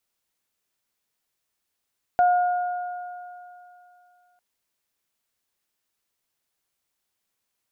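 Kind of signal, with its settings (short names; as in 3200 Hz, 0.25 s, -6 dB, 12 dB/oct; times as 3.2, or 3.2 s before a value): additive tone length 2.20 s, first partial 716 Hz, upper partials -14 dB, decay 2.71 s, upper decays 3.15 s, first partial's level -14 dB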